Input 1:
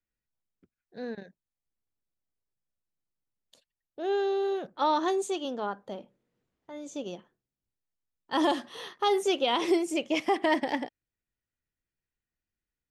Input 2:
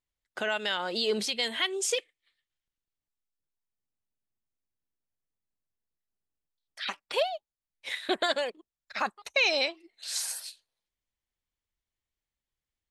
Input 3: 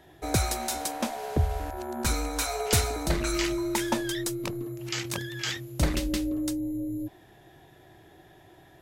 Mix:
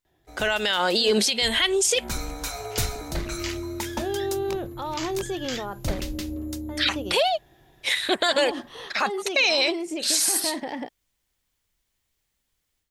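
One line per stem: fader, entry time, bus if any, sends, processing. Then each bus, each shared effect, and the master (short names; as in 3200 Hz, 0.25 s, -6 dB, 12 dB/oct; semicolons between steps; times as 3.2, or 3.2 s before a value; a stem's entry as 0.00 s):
-6.5 dB, 0.00 s, bus A, no send, high shelf 4200 Hz -10 dB; limiter -26.5 dBFS, peak gain reduction 11.5 dB
+1.5 dB, 0.00 s, bus A, no send, dry
1.82 s -15 dB -> 2.08 s -4 dB, 0.05 s, no bus, no send, octaver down 2 oct, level -2 dB; bell 9900 Hz -6 dB 0.79 oct; notch 8000 Hz, Q 20
bus A: 0.0 dB, AGC gain up to 10 dB; limiter -11 dBFS, peak gain reduction 7 dB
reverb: off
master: high shelf 4100 Hz +6 dB; limiter -12 dBFS, peak gain reduction 6 dB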